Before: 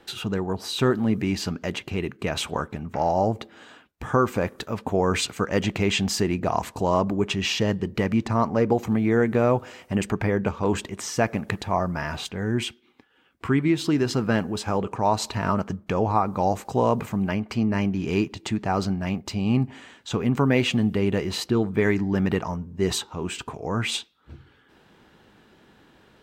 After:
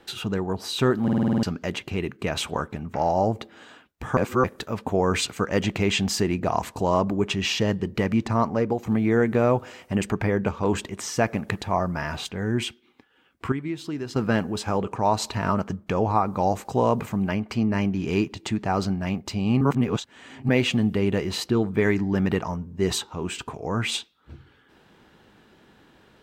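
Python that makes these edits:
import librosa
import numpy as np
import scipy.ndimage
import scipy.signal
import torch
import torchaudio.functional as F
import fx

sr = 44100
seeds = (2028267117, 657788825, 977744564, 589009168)

y = fx.edit(x, sr, fx.stutter_over(start_s=1.03, slice_s=0.05, count=8),
    fx.reverse_span(start_s=4.17, length_s=0.27),
    fx.fade_out_to(start_s=8.42, length_s=0.44, floor_db=-6.5),
    fx.clip_gain(start_s=13.52, length_s=0.64, db=-9.0),
    fx.reverse_span(start_s=19.61, length_s=0.88), tone=tone)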